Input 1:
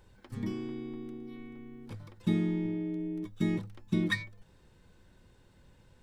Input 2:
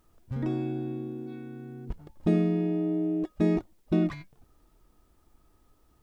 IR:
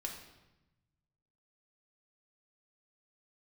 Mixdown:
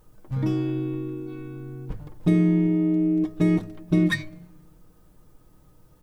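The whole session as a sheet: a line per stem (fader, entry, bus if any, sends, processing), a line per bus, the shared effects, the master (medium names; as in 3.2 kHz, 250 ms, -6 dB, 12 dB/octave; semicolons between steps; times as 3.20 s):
+2.5 dB, 0.00 s, no send, level-controlled noise filter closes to 730 Hz, open at -29.5 dBFS
-1.5 dB, 0.00 s, send -3.5 dB, compression 2.5:1, threshold -27 dBFS, peak gain reduction 6 dB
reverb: on, RT60 0.95 s, pre-delay 3 ms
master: treble shelf 7.3 kHz +6 dB; comb 6.5 ms, depth 45%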